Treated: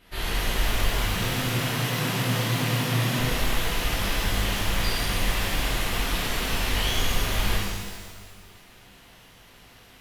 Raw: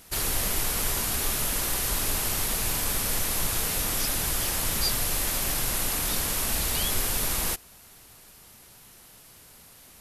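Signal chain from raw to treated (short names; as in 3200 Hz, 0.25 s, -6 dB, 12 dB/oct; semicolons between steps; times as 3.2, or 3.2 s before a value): 1.14–3.19 frequency shift +110 Hz; resonant high shelf 4600 Hz -13 dB, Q 1.5; shimmer reverb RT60 1.5 s, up +12 st, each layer -8 dB, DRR -9 dB; gain -6.5 dB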